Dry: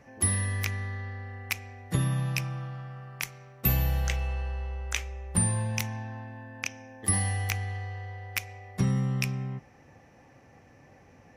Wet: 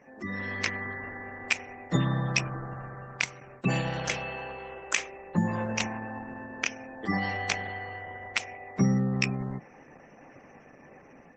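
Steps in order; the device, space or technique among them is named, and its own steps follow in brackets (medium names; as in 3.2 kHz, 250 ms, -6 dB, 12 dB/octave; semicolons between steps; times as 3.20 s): 3.40–4.37 s: gate with hold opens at -42 dBFS; noise-suppressed video call (high-pass 160 Hz 24 dB/octave; spectral gate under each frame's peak -25 dB strong; level rider gain up to 6.5 dB; Opus 12 kbps 48 kHz)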